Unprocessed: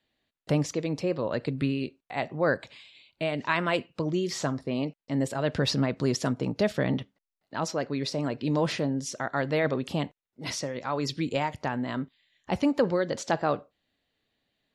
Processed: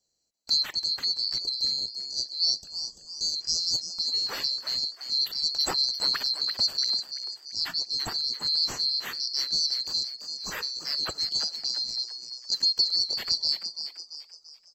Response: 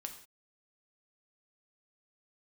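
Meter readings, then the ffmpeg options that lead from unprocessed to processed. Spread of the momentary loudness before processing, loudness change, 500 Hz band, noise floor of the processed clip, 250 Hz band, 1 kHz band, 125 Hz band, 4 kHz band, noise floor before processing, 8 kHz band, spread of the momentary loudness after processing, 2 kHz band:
7 LU, +3.0 dB, -20.5 dB, -55 dBFS, -23.0 dB, -11.0 dB, -22.0 dB, +15.5 dB, under -85 dBFS, +5.0 dB, 10 LU, -7.5 dB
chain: -filter_complex "[0:a]afftfilt=real='real(if(lt(b,736),b+184*(1-2*mod(floor(b/184),2)),b),0)':imag='imag(if(lt(b,736),b+184*(1-2*mod(floor(b/184),2)),b),0)':win_size=2048:overlap=0.75,asplit=6[s0][s1][s2][s3][s4][s5];[s1]adelay=339,afreqshift=130,volume=0.355[s6];[s2]adelay=678,afreqshift=260,volume=0.15[s7];[s3]adelay=1017,afreqshift=390,volume=0.0624[s8];[s4]adelay=1356,afreqshift=520,volume=0.0263[s9];[s5]adelay=1695,afreqshift=650,volume=0.0111[s10];[s0][s6][s7][s8][s9][s10]amix=inputs=6:normalize=0,adynamicequalizer=threshold=0.00562:dfrequency=6600:dqfactor=2.8:tfrequency=6600:tqfactor=2.8:attack=5:release=100:ratio=0.375:range=3.5:mode=cutabove:tftype=bell"

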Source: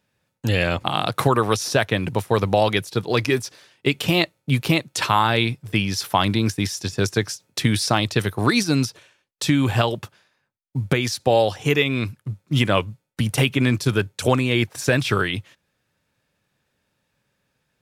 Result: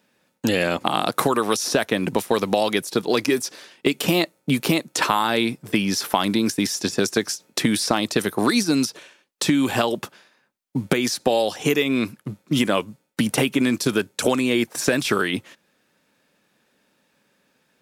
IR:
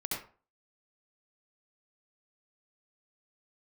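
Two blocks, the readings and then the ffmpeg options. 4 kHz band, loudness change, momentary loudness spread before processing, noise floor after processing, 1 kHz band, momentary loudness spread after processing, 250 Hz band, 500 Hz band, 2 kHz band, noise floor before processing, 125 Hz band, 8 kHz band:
-0.5 dB, -0.5 dB, 7 LU, -68 dBFS, -1.0 dB, 5 LU, +2.0 dB, 0.0 dB, -1.5 dB, -74 dBFS, -8.5 dB, +3.0 dB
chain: -filter_complex "[0:a]lowshelf=f=150:t=q:w=1.5:g=-13.5,acrossover=split=2200|5000[s0][s1][s2];[s0]acompressor=threshold=0.0562:ratio=4[s3];[s1]acompressor=threshold=0.00891:ratio=4[s4];[s2]acompressor=threshold=0.0224:ratio=4[s5];[s3][s4][s5]amix=inputs=3:normalize=0,volume=2.24"

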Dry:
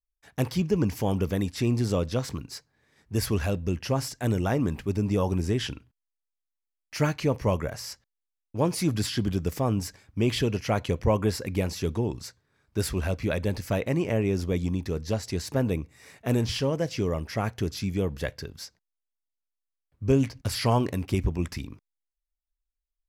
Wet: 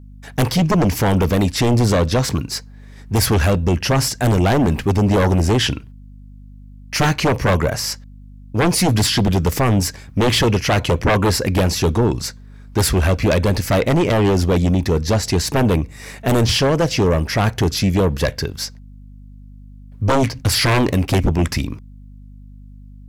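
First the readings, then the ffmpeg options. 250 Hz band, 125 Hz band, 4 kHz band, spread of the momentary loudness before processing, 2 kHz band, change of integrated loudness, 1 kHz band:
+9.5 dB, +10.5 dB, +14.0 dB, 11 LU, +13.5 dB, +10.5 dB, +12.5 dB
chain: -af "aeval=exprs='0.282*sin(PI/2*3.55*val(0)/0.282)':c=same,aeval=exprs='val(0)+0.0126*(sin(2*PI*50*n/s)+sin(2*PI*2*50*n/s)/2+sin(2*PI*3*50*n/s)/3+sin(2*PI*4*50*n/s)/4+sin(2*PI*5*50*n/s)/5)':c=same"

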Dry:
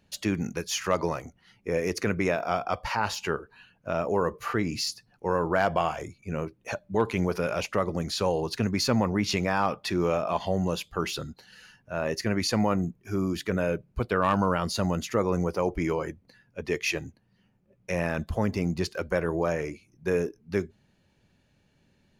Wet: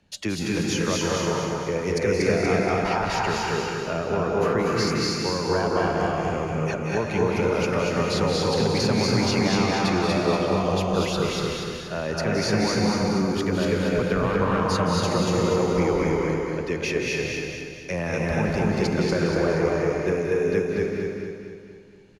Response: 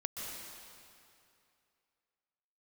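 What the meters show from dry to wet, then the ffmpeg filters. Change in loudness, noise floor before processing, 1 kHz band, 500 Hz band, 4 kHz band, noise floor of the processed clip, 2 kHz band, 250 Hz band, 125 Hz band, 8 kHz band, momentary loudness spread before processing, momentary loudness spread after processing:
+4.5 dB, -67 dBFS, +3.5 dB, +5.5 dB, +5.5 dB, -37 dBFS, +5.0 dB, +5.5 dB, +5.5 dB, +4.5 dB, 9 LU, 6 LU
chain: -filter_complex "[0:a]acrossover=split=110|320[s0][s1][s2];[s0]acompressor=threshold=0.0112:ratio=4[s3];[s1]acompressor=threshold=0.0282:ratio=4[s4];[s2]acompressor=threshold=0.0355:ratio=4[s5];[s3][s4][s5]amix=inputs=3:normalize=0,lowpass=8900,aecho=1:1:238|476|714|952|1190|1428:0.708|0.347|0.17|0.0833|0.0408|0.02[s6];[1:a]atrim=start_sample=2205,afade=t=out:st=0.38:d=0.01,atrim=end_sample=17199,asetrate=32193,aresample=44100[s7];[s6][s7]afir=irnorm=-1:irlink=0,volume=1.41"

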